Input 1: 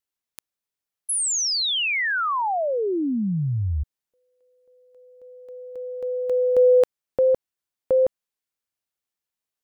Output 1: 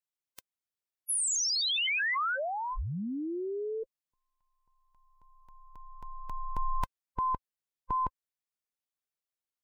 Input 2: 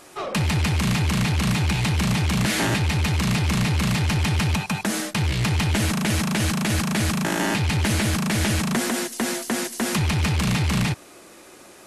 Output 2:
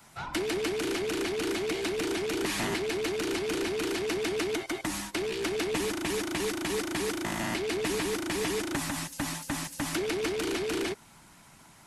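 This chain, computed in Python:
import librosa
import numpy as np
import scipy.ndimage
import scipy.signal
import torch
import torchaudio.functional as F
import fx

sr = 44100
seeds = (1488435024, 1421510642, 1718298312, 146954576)

y = fx.band_invert(x, sr, width_hz=500)
y = fx.hpss(y, sr, part='harmonic', gain_db=-5)
y = F.gain(torch.from_numpy(y), -6.0).numpy()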